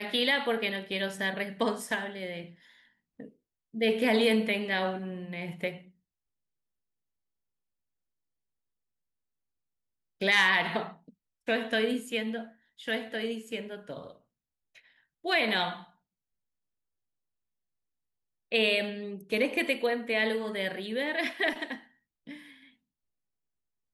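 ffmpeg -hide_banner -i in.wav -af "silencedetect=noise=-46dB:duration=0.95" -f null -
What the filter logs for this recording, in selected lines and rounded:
silence_start: 5.81
silence_end: 10.21 | silence_duration: 4.40
silence_start: 15.85
silence_end: 18.52 | silence_duration: 2.67
silence_start: 22.63
silence_end: 23.94 | silence_duration: 1.31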